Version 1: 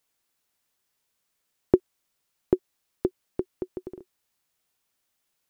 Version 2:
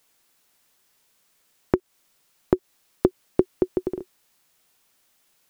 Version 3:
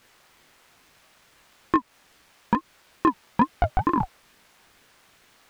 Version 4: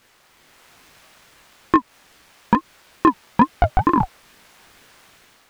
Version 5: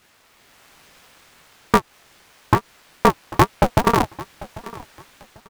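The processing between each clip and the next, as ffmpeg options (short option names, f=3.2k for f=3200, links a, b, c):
-af "equalizer=f=70:t=o:w=0.6:g=-11,acompressor=threshold=-23dB:ratio=6,alimiter=level_in=12.5dB:limit=-1dB:release=50:level=0:latency=1,volume=-1dB"
-filter_complex "[0:a]asplit=2[a][b];[b]highpass=f=720:p=1,volume=31dB,asoftclip=type=tanh:threshold=-1.5dB[c];[a][c]amix=inputs=2:normalize=0,lowpass=f=1.3k:p=1,volume=-6dB,flanger=delay=18:depth=7.7:speed=1.1,aeval=exprs='val(0)*sin(2*PI*470*n/s+470*0.5/2.3*sin(2*PI*2.3*n/s))':c=same"
-af "dynaudnorm=f=200:g=5:m=6dB,volume=1.5dB"
-af "aecho=1:1:794|1588:0.112|0.0292,aeval=exprs='val(0)*sgn(sin(2*PI*110*n/s))':c=same"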